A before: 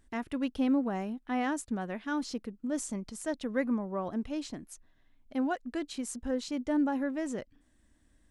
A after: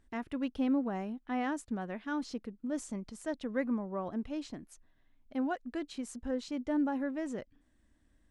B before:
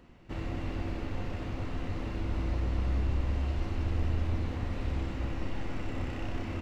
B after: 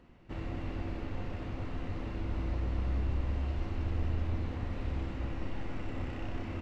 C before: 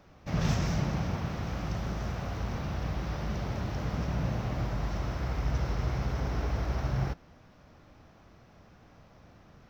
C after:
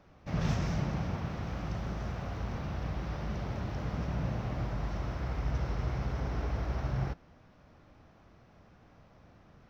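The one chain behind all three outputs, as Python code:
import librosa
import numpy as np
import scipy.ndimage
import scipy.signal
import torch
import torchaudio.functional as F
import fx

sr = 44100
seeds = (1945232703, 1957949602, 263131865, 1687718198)

y = fx.high_shelf(x, sr, hz=6000.0, db=-8.5)
y = y * 10.0 ** (-2.5 / 20.0)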